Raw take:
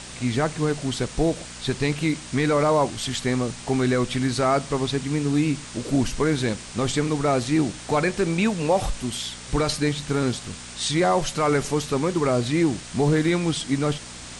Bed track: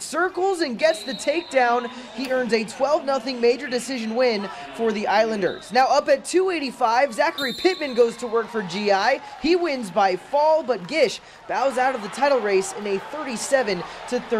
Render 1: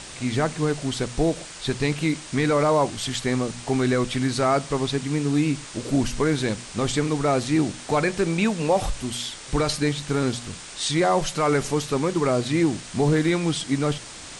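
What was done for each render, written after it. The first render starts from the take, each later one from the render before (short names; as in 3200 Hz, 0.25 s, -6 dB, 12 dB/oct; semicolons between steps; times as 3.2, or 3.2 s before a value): de-hum 60 Hz, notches 4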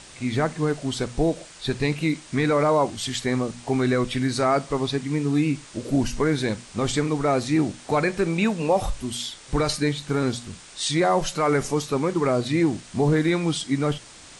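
noise print and reduce 6 dB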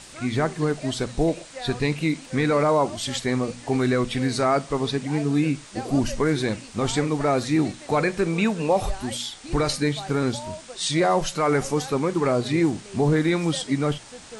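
add bed track -19 dB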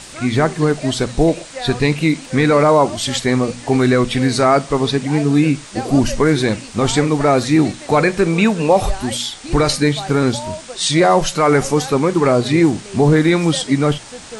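gain +8 dB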